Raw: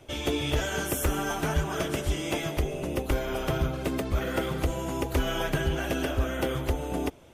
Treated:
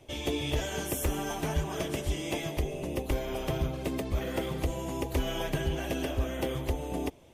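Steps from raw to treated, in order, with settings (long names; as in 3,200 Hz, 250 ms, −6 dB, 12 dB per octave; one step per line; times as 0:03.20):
parametric band 1,400 Hz −9.5 dB 0.36 octaves
level −3 dB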